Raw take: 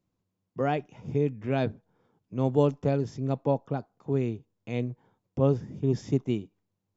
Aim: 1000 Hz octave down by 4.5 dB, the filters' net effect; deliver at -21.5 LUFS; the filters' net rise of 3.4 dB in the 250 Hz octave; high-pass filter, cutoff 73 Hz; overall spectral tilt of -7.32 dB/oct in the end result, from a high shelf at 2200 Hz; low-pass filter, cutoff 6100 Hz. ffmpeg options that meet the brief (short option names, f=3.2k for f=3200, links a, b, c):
-af "highpass=73,lowpass=6.1k,equalizer=f=250:t=o:g=4.5,equalizer=f=1k:t=o:g=-7,highshelf=f=2.2k:g=-3,volume=6.5dB"